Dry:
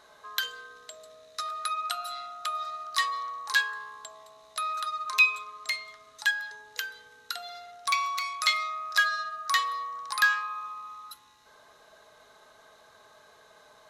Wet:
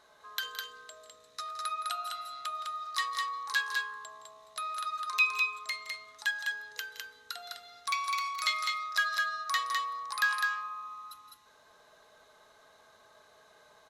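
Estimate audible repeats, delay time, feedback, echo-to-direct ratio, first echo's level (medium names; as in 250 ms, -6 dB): 2, 167 ms, no regular repeats, -3.0 dB, -15.0 dB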